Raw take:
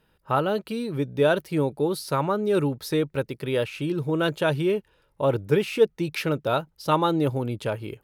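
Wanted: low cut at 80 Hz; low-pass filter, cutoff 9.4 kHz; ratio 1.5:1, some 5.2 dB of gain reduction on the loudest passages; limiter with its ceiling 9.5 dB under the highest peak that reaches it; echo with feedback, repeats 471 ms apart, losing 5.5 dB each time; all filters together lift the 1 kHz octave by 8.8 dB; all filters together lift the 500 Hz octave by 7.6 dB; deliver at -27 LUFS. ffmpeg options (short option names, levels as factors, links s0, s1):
-af "highpass=80,lowpass=9400,equalizer=f=500:t=o:g=7,equalizer=f=1000:t=o:g=9,acompressor=threshold=0.112:ratio=1.5,alimiter=limit=0.224:level=0:latency=1,aecho=1:1:471|942|1413|1884|2355|2826|3297:0.531|0.281|0.149|0.079|0.0419|0.0222|0.0118,volume=0.631"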